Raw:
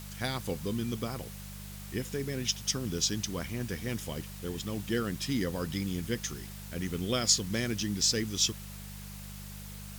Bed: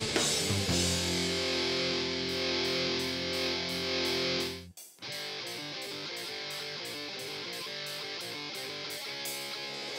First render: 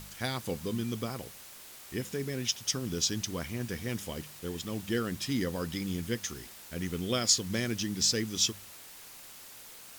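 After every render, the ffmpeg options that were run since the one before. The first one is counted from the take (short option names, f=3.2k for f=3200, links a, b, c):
-af "bandreject=f=50:t=h:w=4,bandreject=f=100:t=h:w=4,bandreject=f=150:t=h:w=4,bandreject=f=200:t=h:w=4"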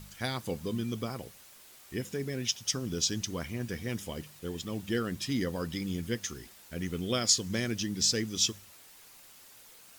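-af "afftdn=nr=6:nf=-50"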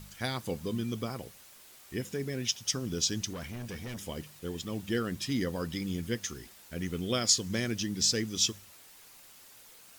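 -filter_complex "[0:a]asettb=1/sr,asplit=3[a][b][c];[a]atrim=end=3.334[d];[b]atrim=start=3.33:end=4.07,asetpts=PTS-STARTPTS,afade=t=in:d=0.004:c=qsin,afade=t=out:st=0.736:d=0.004:c=qsin,asoftclip=type=hard:threshold=-36dB[e];[c]atrim=start=4.066[f];[d][e]acrossfade=d=0.004:c1=hsin:c2=qsin[g];[g][f]acrossfade=d=0.004:c1=qsin:c2=hsin"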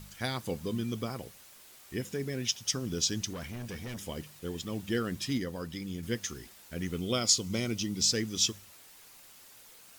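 -filter_complex "[0:a]asettb=1/sr,asplit=3[a][b][c];[a]atrim=end=6.984[d];[b]atrim=start=6.98:end=8.08,asetpts=PTS-STARTPTS,afade=t=in:d=0.004:c=qsin,afade=t=out:st=1.096:d=0.004:c=qsin,asuperstop=centerf=1700:order=4:qfactor=4.6[e];[c]atrim=start=8.076[f];[d][e]acrossfade=d=0.004:c1=hsin:c2=qsin[g];[g][f]acrossfade=d=0.004:c1=qsin:c2=hsin,asplit=3[h][i][j];[h]atrim=end=5.382[k];[i]atrim=start=5.378:end=6.032,asetpts=PTS-STARTPTS,volume=-4dB[l];[j]atrim=start=6.028[m];[k][l]acrossfade=d=0.004:c1=hsin:c2=hsin[n];[n][m]acrossfade=d=0.004:c1=hsin:c2=hsin"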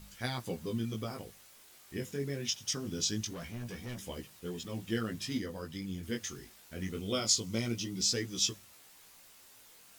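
-af "acrusher=bits=11:mix=0:aa=0.000001,flanger=delay=16:depth=5.6:speed=0.24"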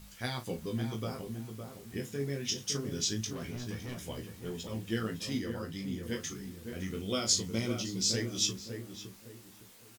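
-filter_complex "[0:a]asplit=2[a][b];[b]adelay=36,volume=-11dB[c];[a][c]amix=inputs=2:normalize=0,asplit=2[d][e];[e]adelay=561,lowpass=f=1.3k:p=1,volume=-6dB,asplit=2[f][g];[g]adelay=561,lowpass=f=1.3k:p=1,volume=0.33,asplit=2[h][i];[i]adelay=561,lowpass=f=1.3k:p=1,volume=0.33,asplit=2[j][k];[k]adelay=561,lowpass=f=1.3k:p=1,volume=0.33[l];[d][f][h][j][l]amix=inputs=5:normalize=0"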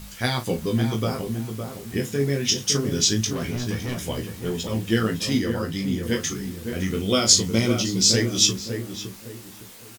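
-af "volume=12dB"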